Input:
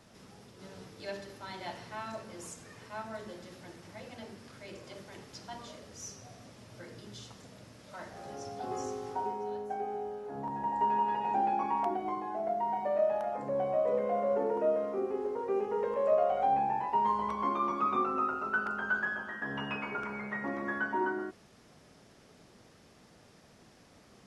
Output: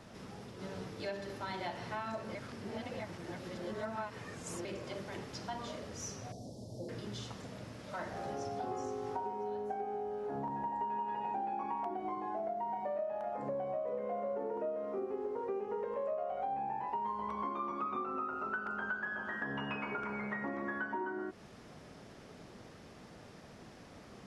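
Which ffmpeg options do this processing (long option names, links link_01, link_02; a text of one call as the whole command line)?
ffmpeg -i in.wav -filter_complex "[0:a]asettb=1/sr,asplit=3[link_01][link_02][link_03];[link_01]atrim=end=6.324[link_04];[link_02]atrim=start=6.32:end=6.89,asetpts=PTS-STARTPTS,afade=type=in:duration=0.004:curve=qsin,afade=type=out:start_time=0.566:duration=0.004:curve=qsin,asuperstop=centerf=1800:order=8:qfactor=0.52[link_05];[link_03]atrim=start=6.886[link_06];[link_04][link_05]acrossfade=duration=0.004:curve1=hsin:curve2=qsin[link_07];[link_07][link_06]acrossfade=duration=0.004:curve1=qsin:curve2=hsin,asplit=3[link_08][link_09][link_10];[link_08]atrim=end=2.352[link_11];[link_09]atrim=start=2.348:end=4.652,asetpts=PTS-STARTPTS,areverse[link_12];[link_10]atrim=start=4.648[link_13];[link_11][link_12]acrossfade=duration=0.004:curve1=hsin:curve2=hsin[link_14];[link_14][link_13]acrossfade=duration=0.004:curve1=hsin:curve2=hsin,highshelf=frequency=4200:gain=-8,acompressor=threshold=-42dB:ratio=6,volume=6dB" out.wav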